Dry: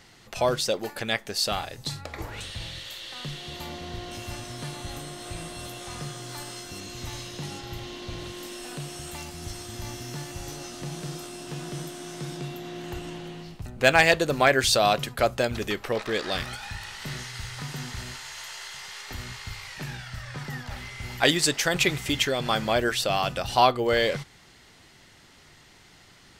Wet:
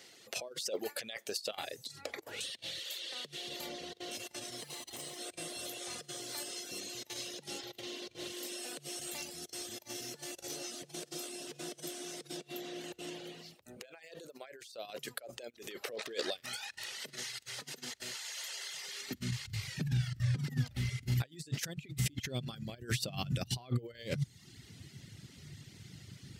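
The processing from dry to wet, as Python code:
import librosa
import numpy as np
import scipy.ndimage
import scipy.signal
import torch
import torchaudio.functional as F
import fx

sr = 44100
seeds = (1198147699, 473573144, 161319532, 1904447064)

y = fx.lower_of_two(x, sr, delay_ms=1.0, at=(4.61, 5.18))
y = fx.highpass(y, sr, hz=67.0, slope=6)
y = fx.tone_stack(y, sr, knobs='10-0-1')
y = fx.over_compress(y, sr, threshold_db=-53.0, ratio=-0.5)
y = fx.filter_sweep_highpass(y, sr, from_hz=520.0, to_hz=120.0, start_s=18.83, end_s=19.44, q=1.8)
y = fx.dereverb_blind(y, sr, rt60_s=0.86)
y = y * 10.0 ** (18.0 / 20.0)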